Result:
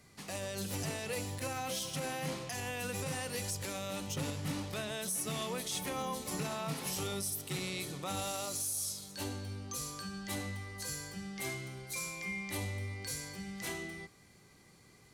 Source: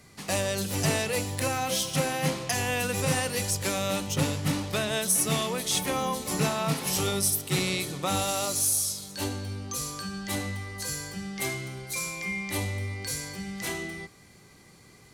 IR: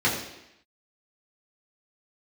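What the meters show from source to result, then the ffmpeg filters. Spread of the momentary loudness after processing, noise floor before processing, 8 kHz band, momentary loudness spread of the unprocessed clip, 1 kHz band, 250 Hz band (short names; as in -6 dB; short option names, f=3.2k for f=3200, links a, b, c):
6 LU, -54 dBFS, -10.0 dB, 9 LU, -9.5 dB, -9.5 dB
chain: -af "alimiter=limit=-20dB:level=0:latency=1:release=66,volume=-7dB"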